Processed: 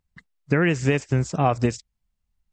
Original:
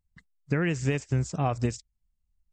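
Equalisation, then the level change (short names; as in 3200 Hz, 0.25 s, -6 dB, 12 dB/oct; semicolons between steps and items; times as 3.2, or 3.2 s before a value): low shelf 120 Hz -10 dB; high shelf 5900 Hz -9 dB; +8.5 dB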